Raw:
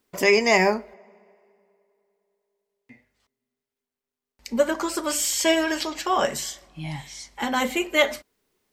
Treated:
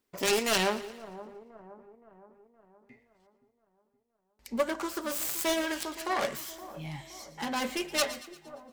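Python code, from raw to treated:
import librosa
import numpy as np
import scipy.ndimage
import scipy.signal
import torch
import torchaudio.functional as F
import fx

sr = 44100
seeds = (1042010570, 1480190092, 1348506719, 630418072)

y = fx.self_delay(x, sr, depth_ms=0.47)
y = fx.echo_split(y, sr, split_hz=1200.0, low_ms=519, high_ms=116, feedback_pct=52, wet_db=-15.0)
y = F.gain(torch.from_numpy(y), -7.0).numpy()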